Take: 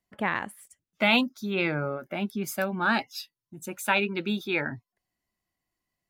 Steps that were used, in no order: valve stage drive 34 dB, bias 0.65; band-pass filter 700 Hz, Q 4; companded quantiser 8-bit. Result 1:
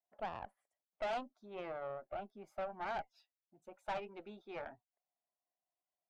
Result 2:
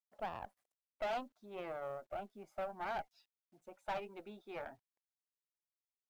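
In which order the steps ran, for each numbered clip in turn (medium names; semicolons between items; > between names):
companded quantiser > band-pass filter > valve stage; band-pass filter > valve stage > companded quantiser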